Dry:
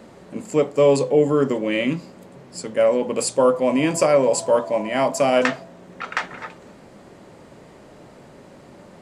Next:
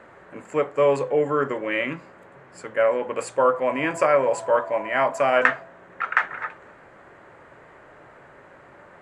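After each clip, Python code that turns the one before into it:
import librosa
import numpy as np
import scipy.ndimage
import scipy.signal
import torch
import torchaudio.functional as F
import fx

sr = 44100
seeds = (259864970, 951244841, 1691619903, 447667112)

y = fx.curve_eq(x, sr, hz=(130.0, 210.0, 330.0, 850.0, 1600.0, 5000.0, 7200.0, 12000.0), db=(0, -8, 0, 6, 14, -10, -5, -11))
y = y * librosa.db_to_amplitude(-6.5)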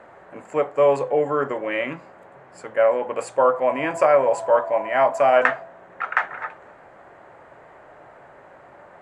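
y = fx.peak_eq(x, sr, hz=730.0, db=8.0, octaves=0.85)
y = y * librosa.db_to_amplitude(-2.0)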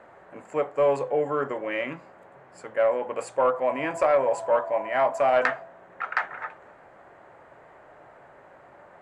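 y = 10.0 ** (-6.0 / 20.0) * np.tanh(x / 10.0 ** (-6.0 / 20.0))
y = y * librosa.db_to_amplitude(-4.0)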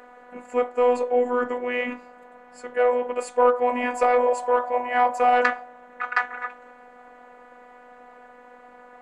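y = fx.robotise(x, sr, hz=246.0)
y = y * librosa.db_to_amplitude(5.5)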